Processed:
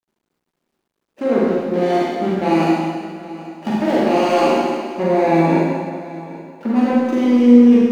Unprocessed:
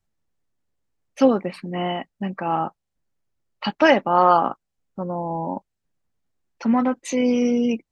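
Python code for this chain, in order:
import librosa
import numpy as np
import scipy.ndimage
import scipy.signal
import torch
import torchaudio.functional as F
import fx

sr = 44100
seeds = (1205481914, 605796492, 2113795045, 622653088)

p1 = scipy.signal.medfilt(x, 41)
p2 = scipy.signal.sosfilt(scipy.signal.butter(4, 190.0, 'highpass', fs=sr, output='sos'), p1)
p3 = fx.over_compress(p2, sr, threshold_db=-26.0, ratio=-0.5)
p4 = p2 + F.gain(torch.from_numpy(p3), 0.5).numpy()
p5 = fx.peak_eq(p4, sr, hz=360.0, db=7.5, octaves=0.41)
p6 = fx.level_steps(p5, sr, step_db=10)
p7 = fx.high_shelf(p6, sr, hz=6400.0, db=-7.0)
p8 = fx.doubler(p7, sr, ms=13.0, db=-7)
p9 = p8 + fx.echo_single(p8, sr, ms=783, db=-17.5, dry=0)
p10 = fx.rev_schroeder(p9, sr, rt60_s=1.7, comb_ms=33, drr_db=-6.5)
p11 = fx.quant_dither(p10, sr, seeds[0], bits=12, dither='none')
y = F.gain(torch.from_numpy(p11), -1.0).numpy()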